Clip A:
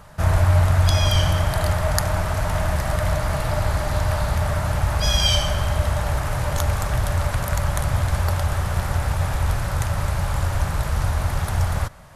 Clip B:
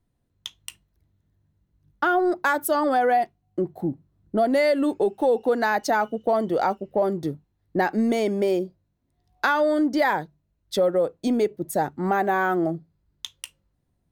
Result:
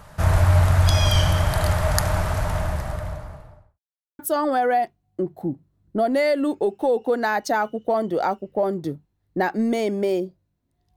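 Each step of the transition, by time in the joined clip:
clip A
2.07–3.8 studio fade out
3.8–4.19 mute
4.19 switch to clip B from 2.58 s

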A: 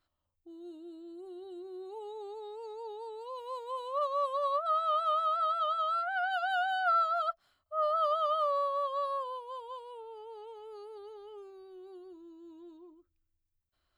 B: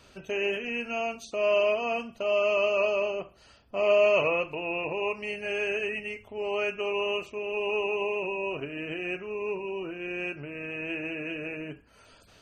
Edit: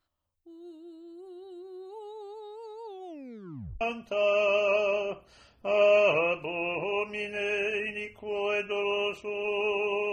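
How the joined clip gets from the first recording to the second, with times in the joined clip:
A
2.86 tape stop 0.95 s
3.81 switch to B from 1.9 s

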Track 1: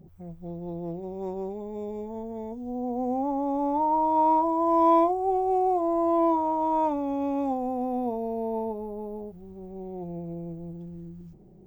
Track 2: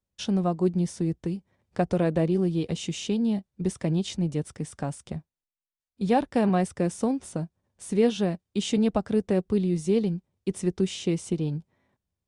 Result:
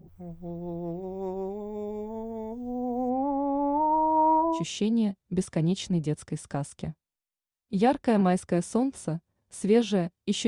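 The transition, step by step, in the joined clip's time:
track 1
3.09–4.64 LPF 3100 Hz -> 1300 Hz
4.58 switch to track 2 from 2.86 s, crossfade 0.12 s

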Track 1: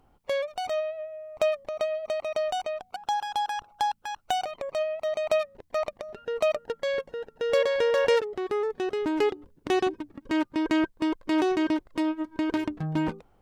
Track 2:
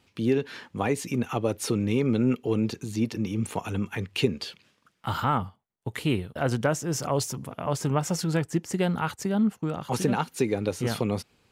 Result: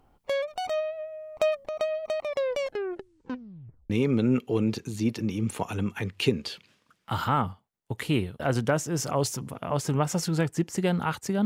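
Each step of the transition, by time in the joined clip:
track 1
2.2 tape stop 1.70 s
3.9 switch to track 2 from 1.86 s

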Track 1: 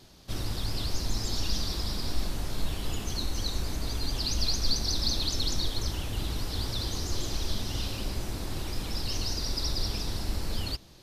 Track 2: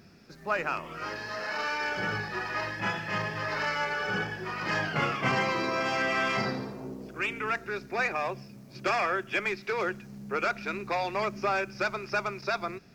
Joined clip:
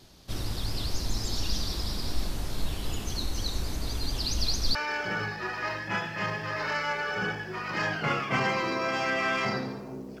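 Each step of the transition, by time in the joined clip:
track 1
4.75 switch to track 2 from 1.67 s

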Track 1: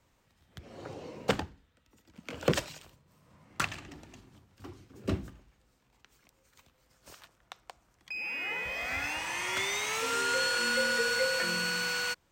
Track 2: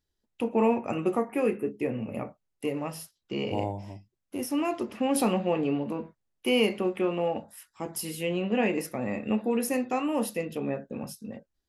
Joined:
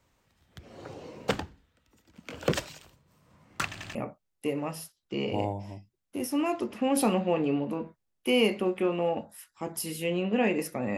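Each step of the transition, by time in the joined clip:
track 1
3.68 stutter in place 0.09 s, 3 plays
3.95 switch to track 2 from 2.14 s

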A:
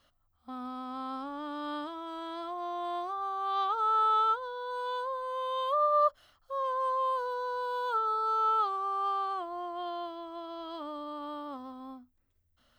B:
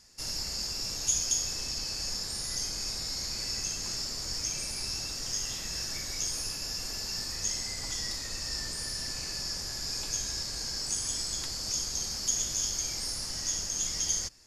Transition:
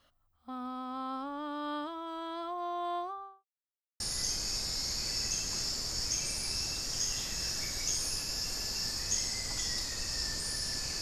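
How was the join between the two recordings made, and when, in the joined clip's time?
A
2.92–3.45 studio fade out
3.45–4 mute
4 switch to B from 2.33 s

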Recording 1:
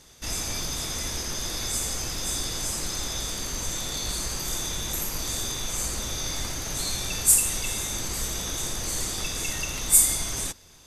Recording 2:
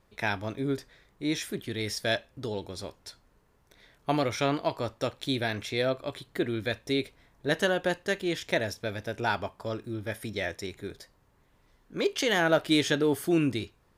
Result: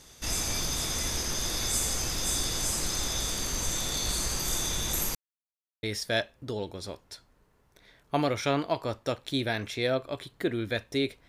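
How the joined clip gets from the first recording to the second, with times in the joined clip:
recording 1
5.15–5.83 mute
5.83 switch to recording 2 from 1.78 s

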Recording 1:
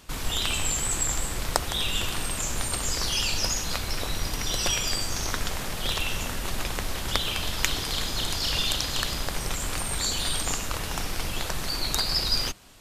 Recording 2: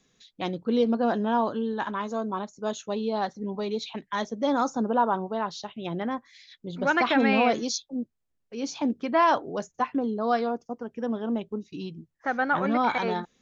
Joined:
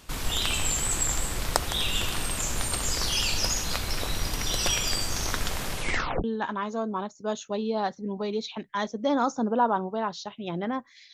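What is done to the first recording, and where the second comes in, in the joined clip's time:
recording 1
5.71 tape stop 0.53 s
6.24 switch to recording 2 from 1.62 s

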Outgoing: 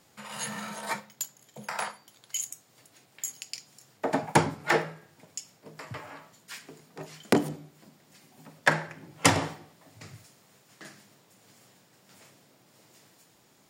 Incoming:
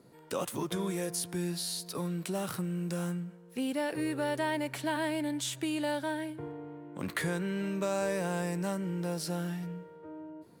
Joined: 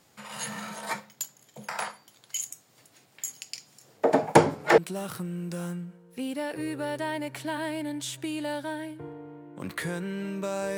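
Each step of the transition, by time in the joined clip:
outgoing
3.84–4.78 bell 480 Hz +9.5 dB 1.3 oct
4.78 switch to incoming from 2.17 s

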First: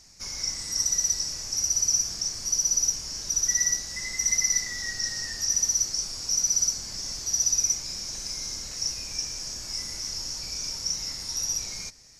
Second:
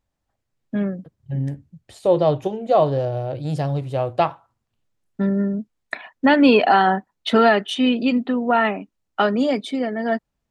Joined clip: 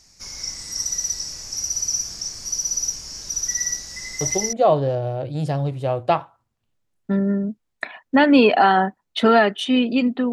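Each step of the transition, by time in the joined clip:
first
4.37 switch to second from 2.47 s, crossfade 0.32 s logarithmic

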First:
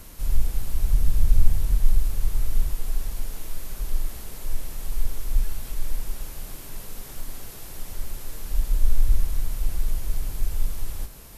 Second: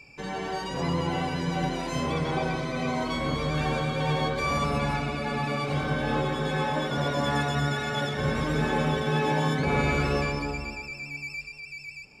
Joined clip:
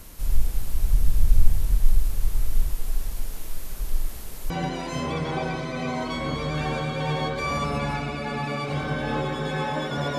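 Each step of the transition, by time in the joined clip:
first
4.5 switch to second from 1.5 s

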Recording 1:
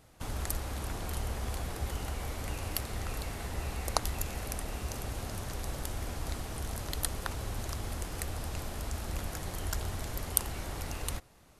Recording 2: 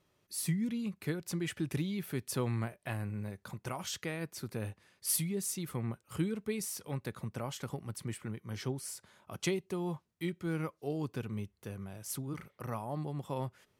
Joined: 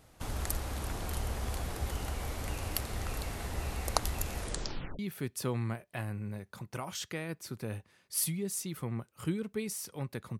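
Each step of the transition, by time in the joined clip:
recording 1
4.37 tape stop 0.62 s
4.99 switch to recording 2 from 1.91 s

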